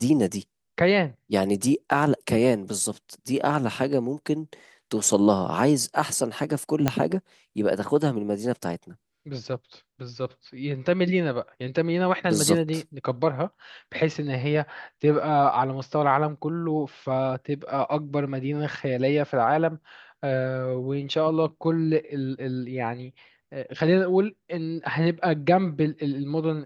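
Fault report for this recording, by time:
6.88 pop -6 dBFS

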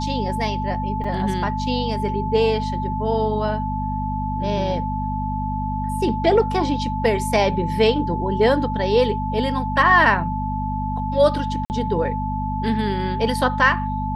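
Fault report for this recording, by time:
hum 50 Hz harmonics 5 -26 dBFS
tone 870 Hz -26 dBFS
1.04 gap 4.8 ms
11.65–11.7 gap 49 ms

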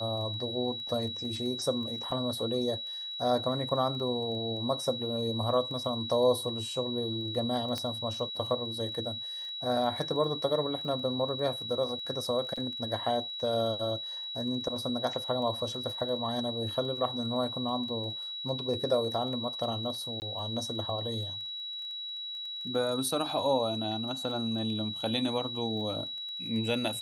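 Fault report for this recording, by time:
crackle 11/s -39 dBFS
tone 3900 Hz -36 dBFS
7.78 pop -20 dBFS
12.56–12.57 gap 5.6 ms
20.2–20.22 gap 19 ms

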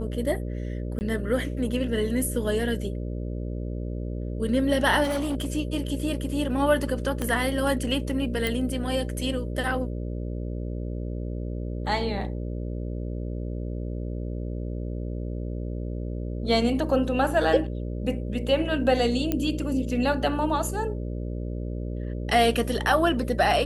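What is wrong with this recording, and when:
buzz 60 Hz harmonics 10 -31 dBFS
0.99–1.01 gap 19 ms
5.03–5.47 clipped -23.5 dBFS
7.22 pop -14 dBFS
8.47 pop
19.32 pop -11 dBFS

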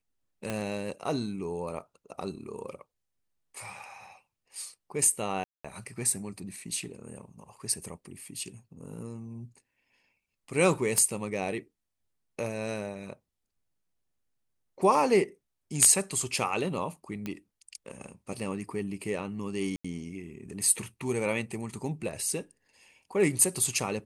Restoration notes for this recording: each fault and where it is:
0.5 pop -17 dBFS
5.44–5.64 gap 0.205 s
10.98 pop -13 dBFS
17.26 pop -21 dBFS
19.76–19.84 gap 85 ms

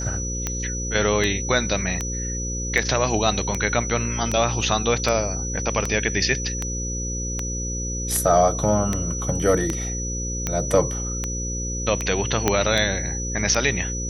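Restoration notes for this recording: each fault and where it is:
buzz 60 Hz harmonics 9 -29 dBFS
tick 78 rpm -9 dBFS
tone 5900 Hz -29 dBFS
4.61 gap 3.4 ms
12.48 pop -3 dBFS

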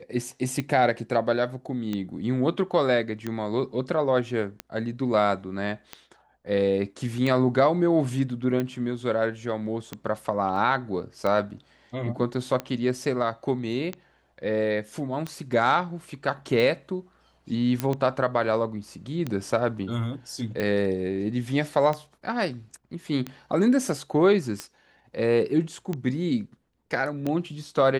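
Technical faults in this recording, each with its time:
tick 45 rpm -16 dBFS
10.56 gap 2.9 ms
17.8 pop -11 dBFS

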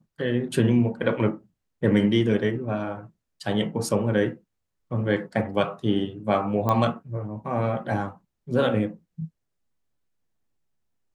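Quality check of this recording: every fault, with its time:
6.69 pop -12 dBFS

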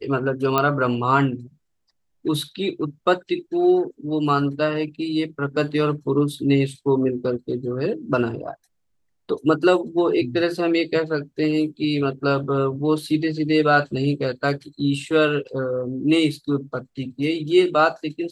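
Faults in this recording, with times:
0.58 pop -6 dBFS

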